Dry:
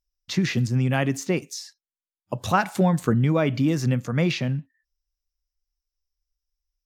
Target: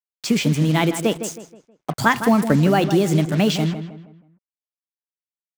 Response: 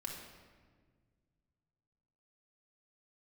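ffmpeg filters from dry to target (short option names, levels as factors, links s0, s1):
-filter_complex "[0:a]asetrate=54243,aresample=44100,acrusher=bits=5:mix=0:aa=0.5,asplit=2[s0][s1];[s1]adelay=159,lowpass=f=2600:p=1,volume=0.316,asplit=2[s2][s3];[s3]adelay=159,lowpass=f=2600:p=1,volume=0.39,asplit=2[s4][s5];[s5]adelay=159,lowpass=f=2600:p=1,volume=0.39,asplit=2[s6][s7];[s7]adelay=159,lowpass=f=2600:p=1,volume=0.39[s8];[s0][s2][s4][s6][s8]amix=inputs=5:normalize=0,volume=1.58"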